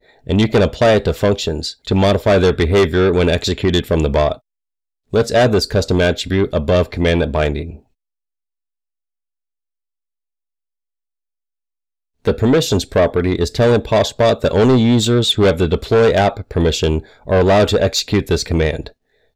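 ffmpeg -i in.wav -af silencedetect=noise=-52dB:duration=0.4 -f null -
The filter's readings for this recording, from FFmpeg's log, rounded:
silence_start: 4.40
silence_end: 5.11 | silence_duration: 0.70
silence_start: 7.84
silence_end: 12.25 | silence_duration: 4.41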